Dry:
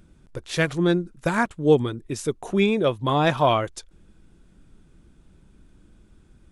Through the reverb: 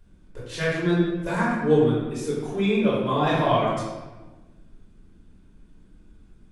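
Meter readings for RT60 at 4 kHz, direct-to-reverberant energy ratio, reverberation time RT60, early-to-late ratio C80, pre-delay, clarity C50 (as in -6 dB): 0.85 s, -8.5 dB, 1.2 s, 2.0 dB, 3 ms, -1.0 dB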